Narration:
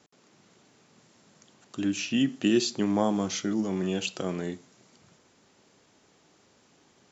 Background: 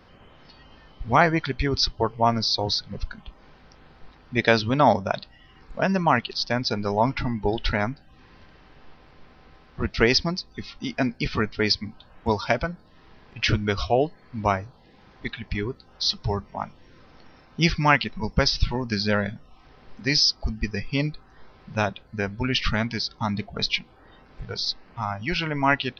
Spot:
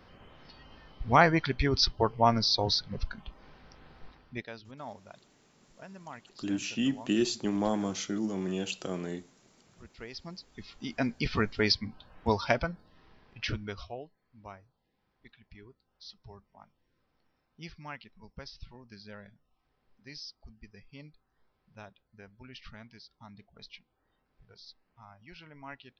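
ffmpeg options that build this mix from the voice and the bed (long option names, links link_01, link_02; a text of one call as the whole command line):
ffmpeg -i stem1.wav -i stem2.wav -filter_complex "[0:a]adelay=4650,volume=-4dB[link_01];[1:a]volume=18.5dB,afade=type=out:start_time=4.06:duration=0.4:silence=0.0749894,afade=type=in:start_time=10.12:duration=1.2:silence=0.0841395,afade=type=out:start_time=12.48:duration=1.57:silence=0.0944061[link_02];[link_01][link_02]amix=inputs=2:normalize=0" out.wav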